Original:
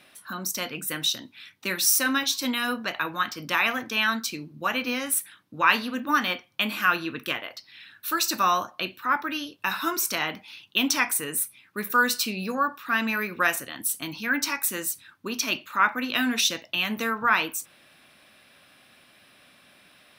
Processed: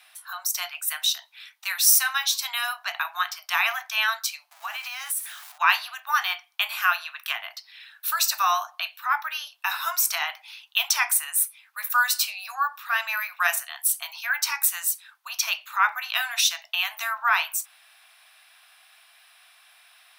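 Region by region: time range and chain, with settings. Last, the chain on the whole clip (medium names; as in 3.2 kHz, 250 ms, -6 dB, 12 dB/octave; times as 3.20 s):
4.51–5.58 s: jump at every zero crossing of -38.5 dBFS + compression, threshold -28 dBFS
whole clip: steep high-pass 670 Hz 96 dB/octave; treble shelf 6 kHz +5.5 dB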